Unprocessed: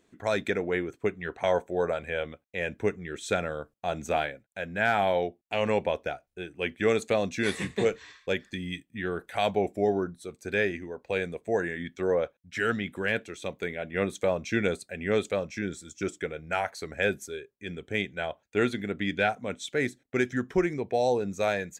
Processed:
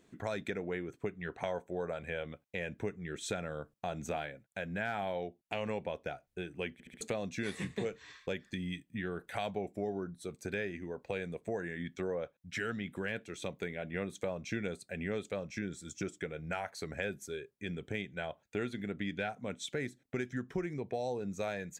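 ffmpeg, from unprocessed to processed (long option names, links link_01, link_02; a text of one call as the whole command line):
ffmpeg -i in.wav -filter_complex "[0:a]asplit=5[link_01][link_02][link_03][link_04][link_05];[link_01]atrim=end=6.802[link_06];[link_02]atrim=start=6.728:end=6.802[link_07];[link_03]atrim=start=6.728:end=6.802[link_08];[link_04]atrim=start=6.728:end=6.802[link_09];[link_05]atrim=start=7.008[link_10];[link_06][link_07]acrossfade=duration=0.004:curve1=hsin:curve2=hsin[link_11];[link_11][link_08]acrossfade=duration=0.004:curve1=hsin:curve2=hsin[link_12];[link_12][link_09]acrossfade=duration=0.004:curve1=hsin:curve2=hsin[link_13];[link_13][link_10]acrossfade=duration=0.004:curve1=hsin:curve2=hsin,equalizer=frequency=150:width_type=o:width=1.1:gain=5.5,acompressor=threshold=-37dB:ratio=3" out.wav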